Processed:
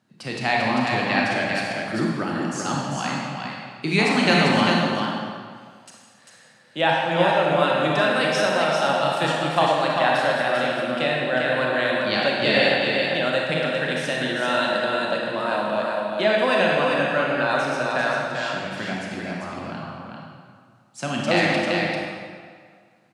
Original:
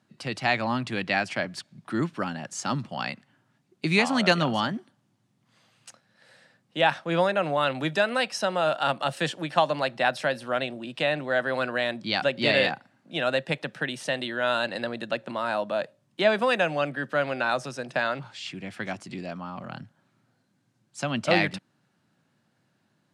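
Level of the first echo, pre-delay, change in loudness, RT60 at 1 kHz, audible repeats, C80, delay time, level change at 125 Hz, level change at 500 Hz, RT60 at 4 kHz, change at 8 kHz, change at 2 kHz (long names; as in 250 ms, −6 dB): −4.5 dB, 28 ms, +5.0 dB, 1.9 s, 1, −1.0 dB, 395 ms, +5.0 dB, +5.0 dB, 1.4 s, +4.5 dB, +5.5 dB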